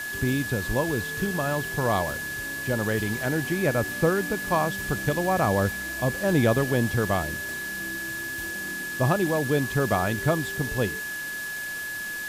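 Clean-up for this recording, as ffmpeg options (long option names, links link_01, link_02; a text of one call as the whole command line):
ffmpeg -i in.wav -af "bandreject=frequency=1700:width=30,afwtdn=0.011" out.wav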